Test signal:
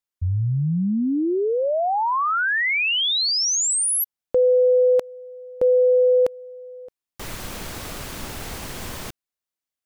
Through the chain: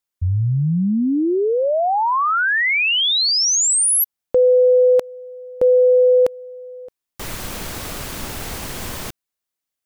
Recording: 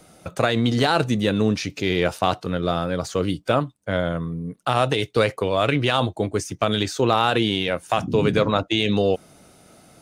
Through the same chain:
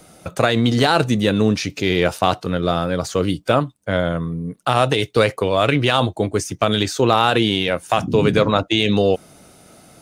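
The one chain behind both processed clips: high shelf 8900 Hz +3 dB; gain +3.5 dB

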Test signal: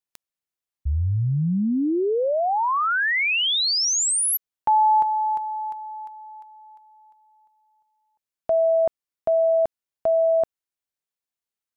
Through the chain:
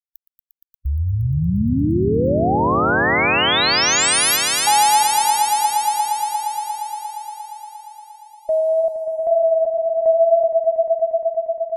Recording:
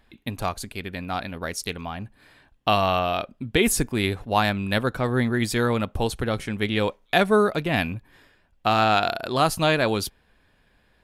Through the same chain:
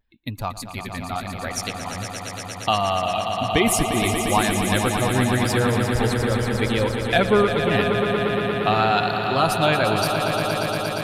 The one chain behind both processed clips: per-bin expansion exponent 1.5; in parallel at +2.5 dB: compressor, threshold -33 dBFS; on the sum: vibrato 0.79 Hz 49 cents; swelling echo 0.117 s, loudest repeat 5, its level -9 dB

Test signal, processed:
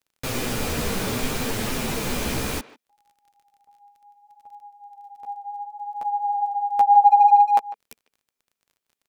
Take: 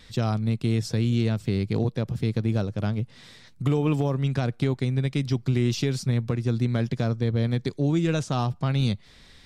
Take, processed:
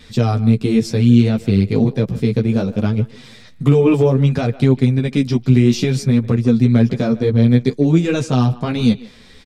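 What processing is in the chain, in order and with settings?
chorus voices 2, 0.63 Hz, delay 12 ms, depth 4.4 ms; small resonant body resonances 230/440/2400 Hz, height 7 dB, ringing for 30 ms; crackle 27/s -57 dBFS; speakerphone echo 0.15 s, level -17 dB; gain +9 dB

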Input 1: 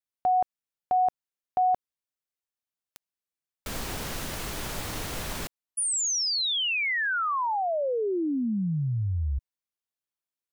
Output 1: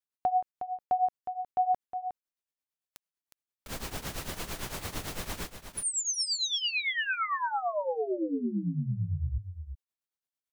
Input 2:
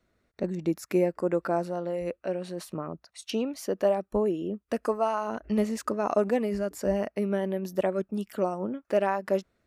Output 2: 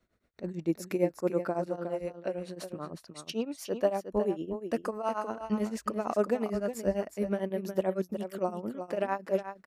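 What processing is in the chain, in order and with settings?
tremolo triangle 8.9 Hz, depth 90%; echo 0.362 s -9 dB

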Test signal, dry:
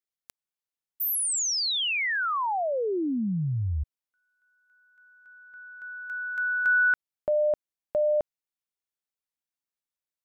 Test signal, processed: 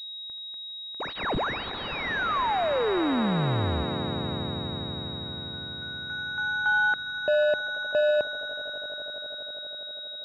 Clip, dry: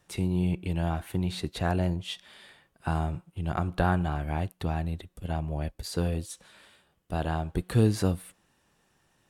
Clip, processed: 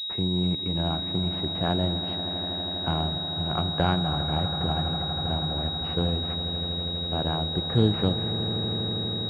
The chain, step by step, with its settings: HPF 89 Hz; swelling echo 81 ms, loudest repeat 8, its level -15 dB; pulse-width modulation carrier 3800 Hz; gain +1.5 dB

